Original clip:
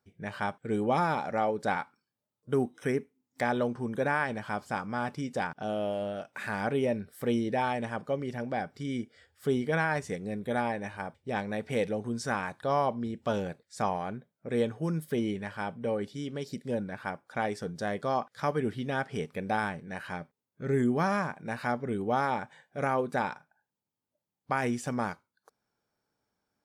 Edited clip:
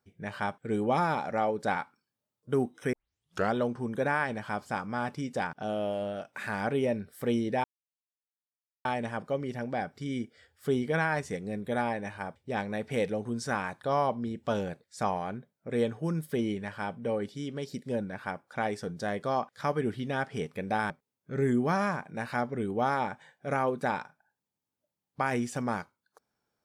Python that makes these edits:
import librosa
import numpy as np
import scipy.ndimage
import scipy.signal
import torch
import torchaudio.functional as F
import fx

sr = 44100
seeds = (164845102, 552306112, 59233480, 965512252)

y = fx.edit(x, sr, fx.tape_start(start_s=2.93, length_s=0.62),
    fx.insert_silence(at_s=7.64, length_s=1.21),
    fx.cut(start_s=19.69, length_s=0.52), tone=tone)